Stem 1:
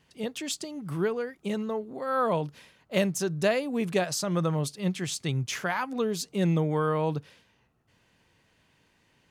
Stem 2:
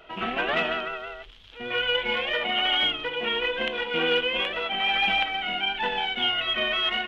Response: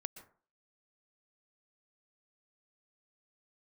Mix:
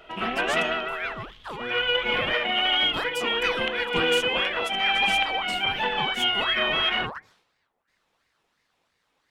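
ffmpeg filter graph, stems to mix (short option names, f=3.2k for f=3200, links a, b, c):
-filter_complex "[0:a]aeval=exprs='val(0)*sin(2*PI*1300*n/s+1300*0.55/2.9*sin(2*PI*2.9*n/s))':c=same,volume=-4.5dB,asplit=2[a][b];[b]volume=-14dB[c];[1:a]volume=1dB[d];[2:a]atrim=start_sample=2205[e];[c][e]afir=irnorm=-1:irlink=0[f];[a][d][f]amix=inputs=3:normalize=0"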